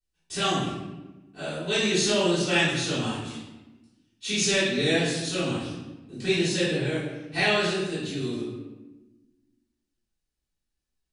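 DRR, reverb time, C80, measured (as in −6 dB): −14.5 dB, 1.1 s, 3.0 dB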